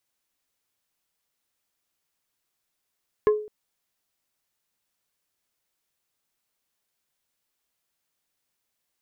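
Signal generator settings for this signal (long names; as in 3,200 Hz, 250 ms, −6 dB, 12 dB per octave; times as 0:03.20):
struck wood plate, length 0.21 s, lowest mode 424 Hz, decay 0.45 s, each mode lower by 9 dB, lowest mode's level −13 dB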